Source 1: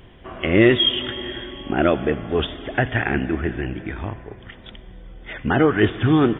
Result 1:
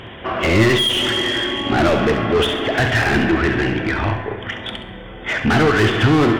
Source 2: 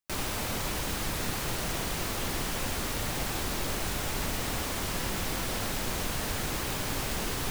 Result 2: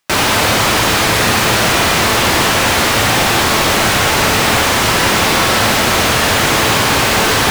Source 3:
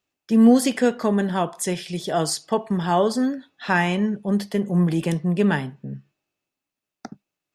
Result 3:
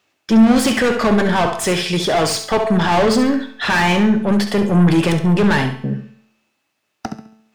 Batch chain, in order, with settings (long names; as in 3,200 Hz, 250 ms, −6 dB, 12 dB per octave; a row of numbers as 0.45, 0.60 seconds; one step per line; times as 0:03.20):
mid-hump overdrive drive 30 dB, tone 3,600 Hz, clips at −3.5 dBFS
parametric band 88 Hz +9 dB 2 octaves
tuned comb filter 110 Hz, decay 0.72 s, harmonics all, mix 60%
on a send: flutter between parallel walls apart 11.7 metres, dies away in 0.41 s
on the sum: normalise the peak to −1.5 dBFS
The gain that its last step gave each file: +1.0, +10.0, +2.0 decibels